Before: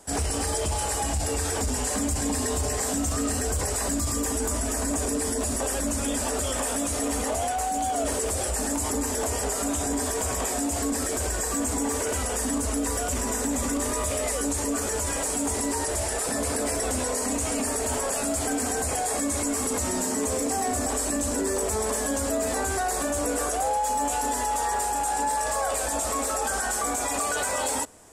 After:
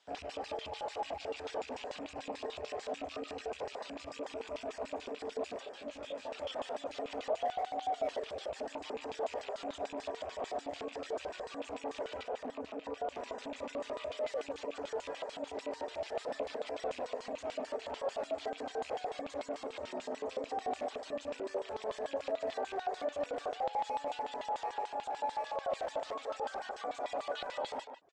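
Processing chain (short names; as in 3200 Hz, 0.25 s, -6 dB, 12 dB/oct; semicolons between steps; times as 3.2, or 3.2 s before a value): rattling part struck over -30 dBFS, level -26 dBFS; de-hum 57.34 Hz, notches 5; reverb removal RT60 0.56 s; 12.23–13.16 high shelf 2200 Hz -10 dB; limiter -20.5 dBFS, peak gain reduction 5 dB; LFO band-pass square 6.8 Hz 610–3500 Hz; air absorption 150 m; speakerphone echo 0.15 s, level -7 dB; 5.64–6.31 detuned doubles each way 52 cents -> 39 cents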